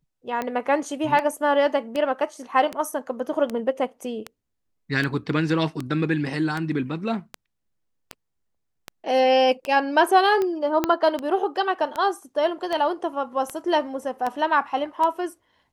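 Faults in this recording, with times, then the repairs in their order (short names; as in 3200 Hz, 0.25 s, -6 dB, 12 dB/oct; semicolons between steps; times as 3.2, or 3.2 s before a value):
tick 78 rpm -14 dBFS
10.84 pop -7 dBFS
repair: de-click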